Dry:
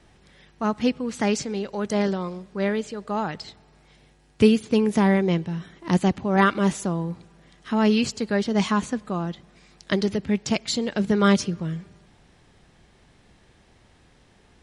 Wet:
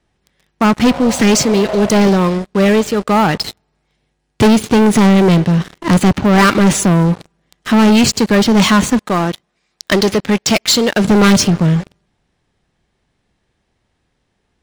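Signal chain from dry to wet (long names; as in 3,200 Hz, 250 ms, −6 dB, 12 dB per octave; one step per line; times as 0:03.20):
0:00.90–0:01.86: healed spectral selection 520–1,500 Hz both
0:08.99–0:11.05: low-shelf EQ 270 Hz −11 dB
leveller curve on the samples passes 5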